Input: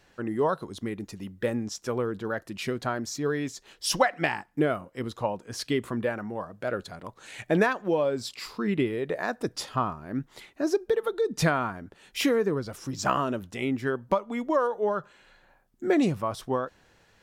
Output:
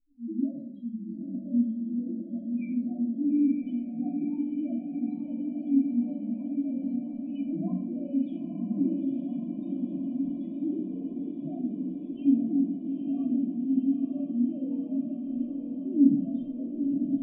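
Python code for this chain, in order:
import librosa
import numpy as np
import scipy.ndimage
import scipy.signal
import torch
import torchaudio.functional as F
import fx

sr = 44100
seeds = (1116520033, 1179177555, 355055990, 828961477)

p1 = fx.fixed_phaser(x, sr, hz=420.0, stages=6)
p2 = fx.rider(p1, sr, range_db=10, speed_s=0.5)
p3 = p1 + (p2 * 10.0 ** (-1.0 / 20.0))
p4 = fx.transient(p3, sr, attack_db=-11, sustain_db=2)
p5 = fx.spec_topn(p4, sr, count=1)
p6 = fx.formant_cascade(p5, sr, vowel='i')
p7 = fx.doubler(p6, sr, ms=21.0, db=-14.0)
p8 = p7 + fx.echo_diffused(p7, sr, ms=934, feedback_pct=77, wet_db=-5, dry=0)
p9 = fx.room_shoebox(p8, sr, seeds[0], volume_m3=960.0, walls='furnished', distance_m=3.0)
y = p9 * 10.0 ** (4.0 / 20.0)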